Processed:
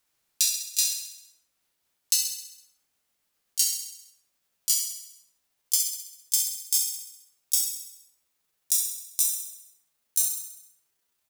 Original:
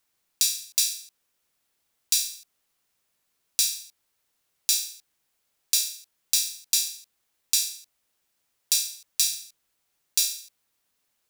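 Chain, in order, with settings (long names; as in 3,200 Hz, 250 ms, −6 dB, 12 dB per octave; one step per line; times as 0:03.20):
pitch glide at a constant tempo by +8.5 semitones starting unshifted
on a send: repeating echo 66 ms, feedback 59%, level −9 dB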